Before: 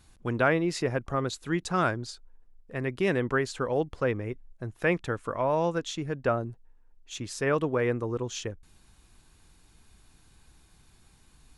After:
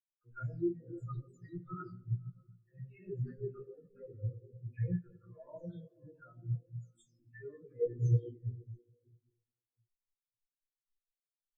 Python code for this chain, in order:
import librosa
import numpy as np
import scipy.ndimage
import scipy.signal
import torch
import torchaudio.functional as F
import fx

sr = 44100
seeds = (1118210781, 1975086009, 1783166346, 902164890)

p1 = fx.spec_delay(x, sr, highs='early', ms=366)
p2 = fx.dynamic_eq(p1, sr, hz=700.0, q=0.82, threshold_db=-39.0, ratio=4.0, max_db=-4)
p3 = fx.level_steps(p2, sr, step_db=20)
p4 = p2 + F.gain(torch.from_numpy(p3), 0.0).numpy()
p5 = fx.leveller(p4, sr, passes=1)
p6 = 10.0 ** (-20.0 / 20.0) * np.tanh(p5 / 10.0 ** (-20.0 / 20.0))
p7 = scipy.signal.lfilter([1.0, -0.8], [1.0], p6)
p8 = fx.doubler(p7, sr, ms=17.0, db=-4)
p9 = fx.echo_diffused(p8, sr, ms=605, feedback_pct=47, wet_db=-8.0)
p10 = fx.room_shoebox(p9, sr, seeds[0], volume_m3=140.0, walls='hard', distance_m=0.54)
y = fx.spectral_expand(p10, sr, expansion=4.0)